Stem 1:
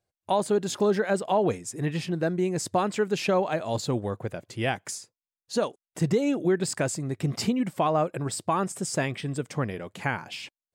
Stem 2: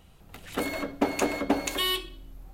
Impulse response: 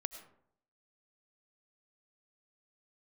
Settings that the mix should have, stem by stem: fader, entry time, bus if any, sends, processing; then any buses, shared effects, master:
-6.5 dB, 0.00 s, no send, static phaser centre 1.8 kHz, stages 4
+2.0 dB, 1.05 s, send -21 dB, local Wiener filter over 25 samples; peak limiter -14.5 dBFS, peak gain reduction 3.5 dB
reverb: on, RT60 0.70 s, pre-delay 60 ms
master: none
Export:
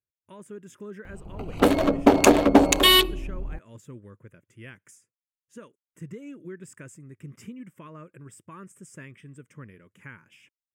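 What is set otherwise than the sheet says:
stem 1 -6.5 dB -> -13.5 dB; stem 2 +2.0 dB -> +12.0 dB

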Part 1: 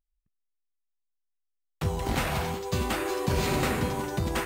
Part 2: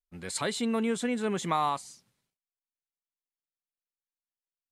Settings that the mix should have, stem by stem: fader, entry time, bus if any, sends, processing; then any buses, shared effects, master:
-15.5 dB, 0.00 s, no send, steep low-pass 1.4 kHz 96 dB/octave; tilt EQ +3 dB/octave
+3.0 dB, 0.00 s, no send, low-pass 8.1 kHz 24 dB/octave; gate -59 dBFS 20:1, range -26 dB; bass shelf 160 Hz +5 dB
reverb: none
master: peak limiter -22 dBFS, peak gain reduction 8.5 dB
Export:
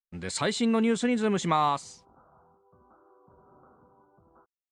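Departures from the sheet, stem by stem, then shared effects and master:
stem 1 -15.5 dB -> -26.5 dB; master: missing peak limiter -22 dBFS, peak gain reduction 8.5 dB

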